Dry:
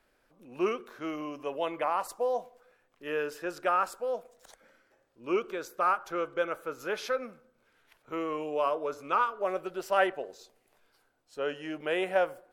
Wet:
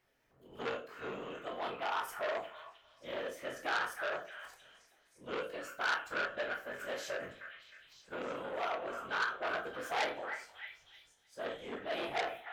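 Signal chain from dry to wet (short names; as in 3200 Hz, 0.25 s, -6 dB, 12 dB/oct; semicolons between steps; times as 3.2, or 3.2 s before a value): whisperiser; formant shift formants +3 st; delay with a stepping band-pass 0.311 s, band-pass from 1600 Hz, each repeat 0.7 oct, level -5 dB; reverb RT60 0.35 s, pre-delay 16 ms, DRR 2 dB; core saturation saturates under 3100 Hz; gain -7 dB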